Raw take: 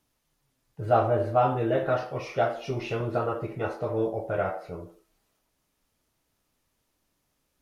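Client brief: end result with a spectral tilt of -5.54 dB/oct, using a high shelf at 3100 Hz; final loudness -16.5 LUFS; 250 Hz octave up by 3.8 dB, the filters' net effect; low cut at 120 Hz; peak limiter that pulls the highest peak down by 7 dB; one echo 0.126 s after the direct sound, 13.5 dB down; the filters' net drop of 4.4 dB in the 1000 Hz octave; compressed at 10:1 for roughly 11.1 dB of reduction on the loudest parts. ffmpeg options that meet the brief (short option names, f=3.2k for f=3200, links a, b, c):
-af "highpass=120,equalizer=f=250:t=o:g=6.5,equalizer=f=1k:t=o:g=-7,highshelf=f=3.1k:g=-7,acompressor=threshold=-31dB:ratio=10,alimiter=level_in=4.5dB:limit=-24dB:level=0:latency=1,volume=-4.5dB,aecho=1:1:126:0.211,volume=22dB"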